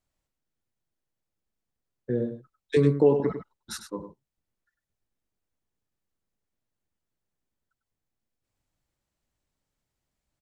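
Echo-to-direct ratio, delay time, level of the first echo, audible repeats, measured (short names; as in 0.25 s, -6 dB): -9.5 dB, 99 ms, -9.5 dB, 1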